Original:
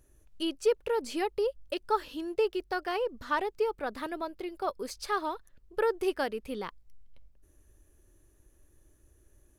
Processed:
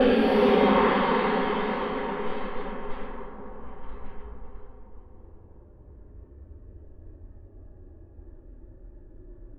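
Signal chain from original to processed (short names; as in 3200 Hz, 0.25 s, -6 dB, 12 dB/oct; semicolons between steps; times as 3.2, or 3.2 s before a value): spring tank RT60 1.3 s, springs 60 ms, chirp 70 ms, DRR -9 dB; Paulstretch 5.6×, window 0.10 s, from 6.57; low-pass opened by the level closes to 590 Hz, open at -27 dBFS; gain +6.5 dB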